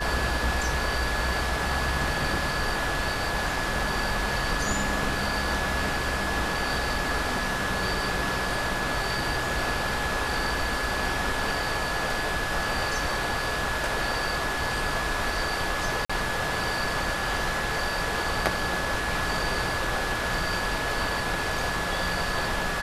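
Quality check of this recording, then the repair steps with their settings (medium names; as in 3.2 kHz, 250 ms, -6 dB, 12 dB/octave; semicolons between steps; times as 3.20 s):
whine 1.7 kHz -32 dBFS
16.05–16.09 s: dropout 45 ms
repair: band-stop 1.7 kHz, Q 30; interpolate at 16.05 s, 45 ms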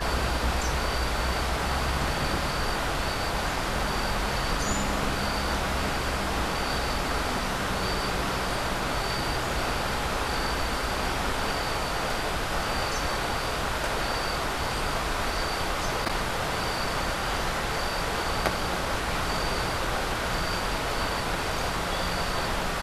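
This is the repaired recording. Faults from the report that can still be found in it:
nothing left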